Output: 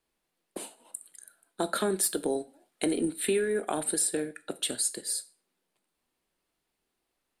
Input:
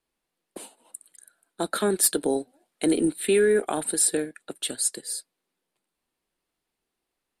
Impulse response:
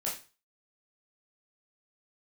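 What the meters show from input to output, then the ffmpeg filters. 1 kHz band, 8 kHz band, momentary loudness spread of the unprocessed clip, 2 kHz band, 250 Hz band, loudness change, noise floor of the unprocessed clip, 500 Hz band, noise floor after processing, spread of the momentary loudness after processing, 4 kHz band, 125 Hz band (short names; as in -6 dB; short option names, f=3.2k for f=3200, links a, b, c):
-3.0 dB, -4.5 dB, 20 LU, -4.5 dB, -5.0 dB, -5.0 dB, -84 dBFS, -6.0 dB, -82 dBFS, 16 LU, -2.5 dB, -4.5 dB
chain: -filter_complex "[0:a]acompressor=threshold=-28dB:ratio=3,asplit=2[a][b];[1:a]atrim=start_sample=2205[c];[b][c]afir=irnorm=-1:irlink=0,volume=-14dB[d];[a][d]amix=inputs=2:normalize=0"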